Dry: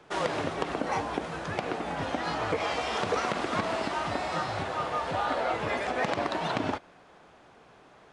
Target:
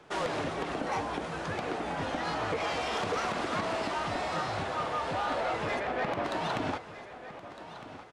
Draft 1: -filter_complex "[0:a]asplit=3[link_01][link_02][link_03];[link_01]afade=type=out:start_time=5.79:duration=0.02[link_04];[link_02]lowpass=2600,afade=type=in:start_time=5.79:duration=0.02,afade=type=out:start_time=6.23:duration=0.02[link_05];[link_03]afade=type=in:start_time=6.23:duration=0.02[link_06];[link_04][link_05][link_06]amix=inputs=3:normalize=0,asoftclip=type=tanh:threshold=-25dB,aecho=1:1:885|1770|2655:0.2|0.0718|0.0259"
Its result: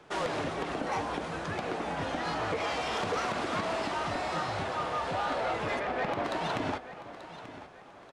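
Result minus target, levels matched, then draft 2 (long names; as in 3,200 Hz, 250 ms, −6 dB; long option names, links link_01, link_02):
echo 373 ms early
-filter_complex "[0:a]asplit=3[link_01][link_02][link_03];[link_01]afade=type=out:start_time=5.79:duration=0.02[link_04];[link_02]lowpass=2600,afade=type=in:start_time=5.79:duration=0.02,afade=type=out:start_time=6.23:duration=0.02[link_05];[link_03]afade=type=in:start_time=6.23:duration=0.02[link_06];[link_04][link_05][link_06]amix=inputs=3:normalize=0,asoftclip=type=tanh:threshold=-25dB,aecho=1:1:1258|2516|3774:0.2|0.0718|0.0259"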